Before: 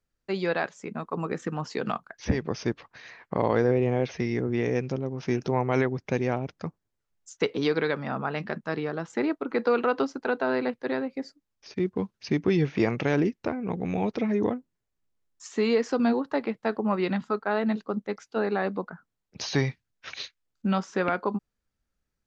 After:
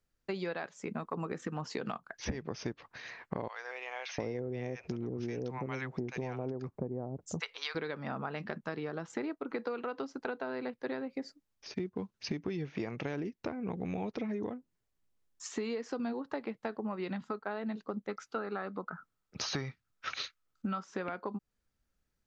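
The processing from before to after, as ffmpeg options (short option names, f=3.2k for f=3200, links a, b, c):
-filter_complex "[0:a]asettb=1/sr,asplit=3[a][b][c];[a]atrim=end=3.484[d];[b]atrim=start=3.48:end=7.75,asetpts=PTS-STARTPTS,afade=t=in:d=0.004:c=qsin,afade=t=out:st=4.266:d=0.004:c=qsin,acrossover=split=870[e][f];[e]adelay=700[g];[g][f]amix=inputs=2:normalize=0,atrim=end_sample=188307[h];[c]atrim=start=7.746[i];[d][h]acrossfade=d=0.004:c1=hsin:c2=qsin[j];[j][i]acrossfade=d=0.004:c1=qsin:c2=hsin,asettb=1/sr,asplit=3[k][l][m];[k]atrim=end=18.094[n];[l]atrim=start=18.09:end=20.84,asetpts=PTS-STARTPTS,afade=t=in:d=0.004:c=qsin,afade=t=out:st=2.746:d=0.004:c=qsin,equalizer=f=1.3k:w=4.9:g=12.5[o];[m]atrim=start=20.836[p];[n][o]acrossfade=d=0.004:c1=hsin:c2=qsin[q];[q][p]acrossfade=d=0.004:c1=qsin:c2=hsin,acompressor=threshold=-33dB:ratio=12"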